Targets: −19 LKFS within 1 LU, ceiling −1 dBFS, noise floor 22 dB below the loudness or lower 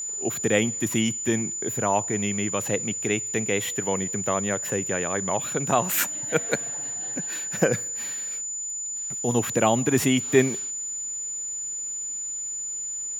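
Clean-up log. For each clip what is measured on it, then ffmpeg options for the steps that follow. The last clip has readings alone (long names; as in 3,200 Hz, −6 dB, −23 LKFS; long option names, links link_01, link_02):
interfering tone 7,000 Hz; level of the tone −29 dBFS; integrated loudness −25.0 LKFS; sample peak −4.0 dBFS; target loudness −19.0 LKFS
→ -af "bandreject=frequency=7000:width=30"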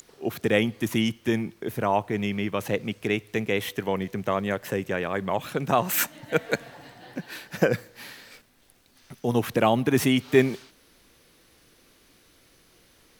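interfering tone none found; integrated loudness −26.0 LKFS; sample peak −4.5 dBFS; target loudness −19.0 LKFS
→ -af "volume=7dB,alimiter=limit=-1dB:level=0:latency=1"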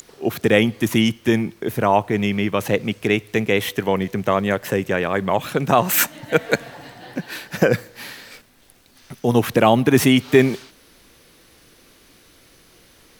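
integrated loudness −19.5 LKFS; sample peak −1.0 dBFS; background noise floor −53 dBFS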